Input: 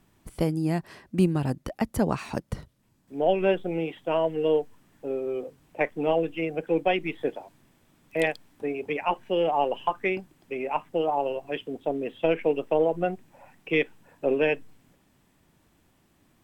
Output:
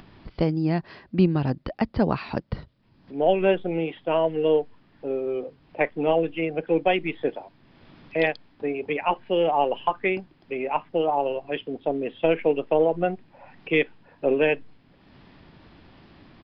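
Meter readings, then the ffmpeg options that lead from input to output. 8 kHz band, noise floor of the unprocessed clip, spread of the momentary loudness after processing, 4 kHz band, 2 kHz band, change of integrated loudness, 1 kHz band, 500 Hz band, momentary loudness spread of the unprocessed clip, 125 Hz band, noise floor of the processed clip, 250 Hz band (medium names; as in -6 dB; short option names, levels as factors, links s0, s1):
no reading, -65 dBFS, 10 LU, +2.5 dB, +2.5 dB, +2.5 dB, +2.5 dB, +2.5 dB, 10 LU, +2.5 dB, -59 dBFS, +2.5 dB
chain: -af "acompressor=mode=upward:threshold=0.00891:ratio=2.5,aresample=11025,aresample=44100,volume=1.33"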